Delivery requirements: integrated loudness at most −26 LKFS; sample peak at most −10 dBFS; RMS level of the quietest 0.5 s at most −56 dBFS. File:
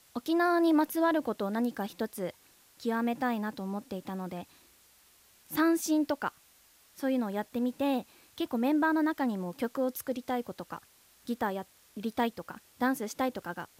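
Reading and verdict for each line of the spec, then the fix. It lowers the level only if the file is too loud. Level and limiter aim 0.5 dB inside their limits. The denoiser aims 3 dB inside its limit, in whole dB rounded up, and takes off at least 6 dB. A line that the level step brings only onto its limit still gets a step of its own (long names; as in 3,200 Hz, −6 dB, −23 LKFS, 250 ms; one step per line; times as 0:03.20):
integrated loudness −31.5 LKFS: in spec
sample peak −15.0 dBFS: in spec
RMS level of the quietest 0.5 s −62 dBFS: in spec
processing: no processing needed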